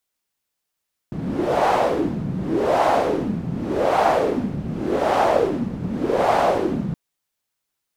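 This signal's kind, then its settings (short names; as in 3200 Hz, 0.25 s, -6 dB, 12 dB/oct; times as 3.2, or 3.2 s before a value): wind-like swept noise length 5.82 s, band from 170 Hz, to 760 Hz, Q 3.4, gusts 5, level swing 9 dB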